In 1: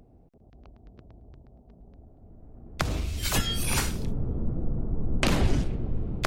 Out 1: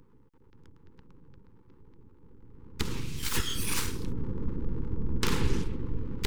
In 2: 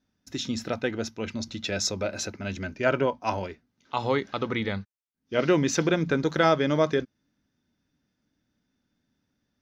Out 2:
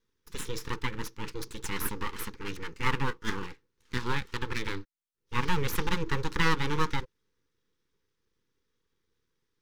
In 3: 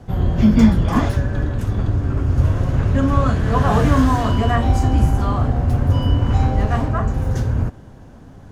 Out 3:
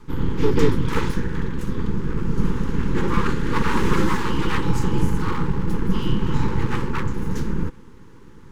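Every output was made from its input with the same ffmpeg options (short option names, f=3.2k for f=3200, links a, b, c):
-af "aeval=exprs='abs(val(0))':c=same,asuperstop=centerf=660:order=8:qfactor=2,volume=-1.5dB"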